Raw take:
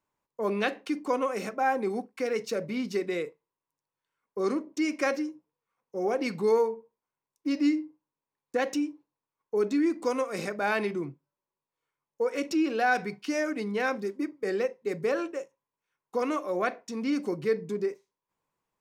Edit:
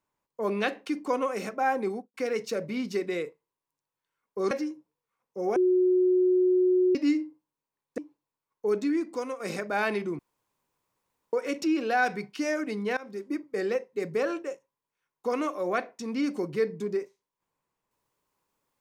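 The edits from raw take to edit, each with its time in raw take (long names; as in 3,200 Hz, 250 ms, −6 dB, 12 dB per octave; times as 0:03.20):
0:01.86–0:02.14: fade out and dull
0:04.51–0:05.09: remove
0:06.14–0:07.53: beep over 366 Hz −19 dBFS
0:08.56–0:08.87: remove
0:09.61–0:10.29: fade out, to −7.5 dB
0:11.08–0:12.22: fill with room tone
0:13.86–0:14.21: fade in, from −22 dB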